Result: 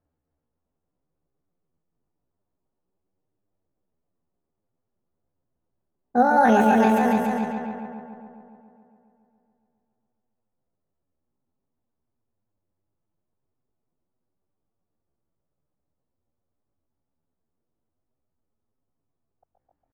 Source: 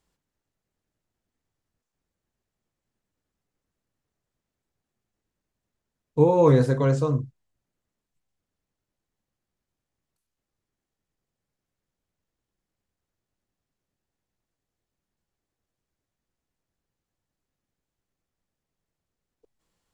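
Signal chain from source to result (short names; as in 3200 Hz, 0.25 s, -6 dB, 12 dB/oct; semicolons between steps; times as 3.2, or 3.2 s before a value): multi-head echo 0.138 s, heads first and second, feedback 60%, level -6.5 dB; low-pass opened by the level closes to 600 Hz, open at -17 dBFS; pitch shift +8.5 st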